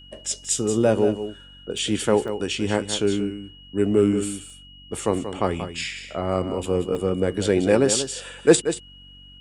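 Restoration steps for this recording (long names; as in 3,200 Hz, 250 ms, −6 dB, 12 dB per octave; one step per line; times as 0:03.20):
hum removal 47.1 Hz, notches 6
notch filter 2,900 Hz, Q 30
repair the gap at 0:00.45/0:01.78/0:02.28/0:04.50/0:06.95, 1.1 ms
echo removal 183 ms −10 dB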